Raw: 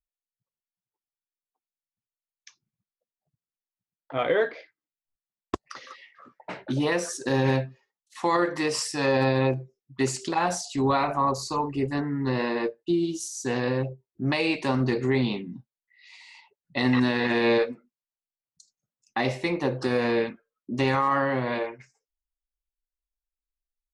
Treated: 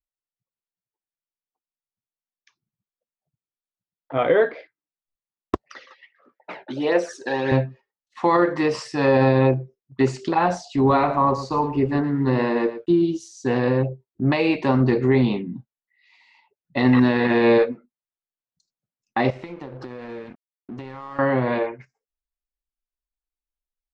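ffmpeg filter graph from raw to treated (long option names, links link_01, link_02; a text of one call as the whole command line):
ffmpeg -i in.wav -filter_complex "[0:a]asettb=1/sr,asplit=3[link_01][link_02][link_03];[link_01]atrim=end=5.634[link_04];[link_02]atrim=start=5.63:end=7.52,asetpts=PTS-STARTPTS,afade=type=in:duration=0.004:curve=qsin,afade=type=out:start_time=1.886:duration=0.004:curve=qsin,highpass=420,equalizer=frequency=1100:width_type=o:width=0.61:gain=-7,aphaser=in_gain=1:out_gain=1:delay=1.3:decay=0.48:speed=1.5:type=triangular[link_05];[link_03]atrim=start=7.516[link_06];[link_04][link_05]acrossfade=duration=0.004:curve1=hsin:curve2=qsin[link_07];[link_07][link_06]acrossfade=duration=0.004:curve1=qsin:curve2=hsin,asettb=1/sr,asplit=3[link_08][link_09][link_10];[link_08]atrim=end=10.764[link_11];[link_09]atrim=start=10.76:end=13.02,asetpts=PTS-STARTPTS,afade=type=in:duration=0.004:curve=qsin,afade=type=out:start_time=2.256:duration=0.004:curve=qsin,aeval=exprs='sgn(val(0))*max(abs(val(0))-0.00211,0)':channel_layout=same,aecho=1:1:114:0.224,atrim=end_sample=99666[link_12];[link_10]atrim=start=13.016[link_13];[link_11][link_12]acrossfade=duration=0.004:curve1=hsin:curve2=qsin[link_14];[link_14][link_13]acrossfade=duration=0.004:curve1=qsin:curve2=hsin,asettb=1/sr,asplit=3[link_15][link_16][link_17];[link_15]atrim=end=19.304[link_18];[link_16]atrim=start=19.3:end=21.19,asetpts=PTS-STARTPTS,afade=type=in:duration=0.004:curve=qsin,afade=type=out:start_time=1.886:duration=0.004:curve=qsin,acompressor=threshold=-35dB:ratio=12:attack=3.2:release=140:knee=1:detection=peak,aeval=exprs='sgn(val(0))*max(abs(val(0))-0.00355,0)':channel_layout=same[link_19];[link_17]atrim=start=21.186[link_20];[link_18][link_19]acrossfade=duration=0.004:curve1=hsin:curve2=qsin[link_21];[link_21][link_20]acrossfade=duration=0.004:curve1=qsin:curve2=hsin,lowpass=4700,agate=range=-8dB:threshold=-47dB:ratio=16:detection=peak,highshelf=frequency=2100:gain=-9,volume=6.5dB" out.wav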